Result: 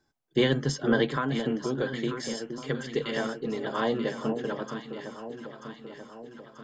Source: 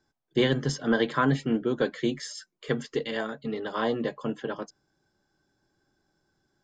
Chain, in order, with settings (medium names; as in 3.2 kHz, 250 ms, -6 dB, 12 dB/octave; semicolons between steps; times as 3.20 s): 1.11–2.83 s: compression 3:1, threshold -27 dBFS, peak gain reduction 6.5 dB; echo whose repeats swap between lows and highs 468 ms, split 970 Hz, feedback 74%, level -7 dB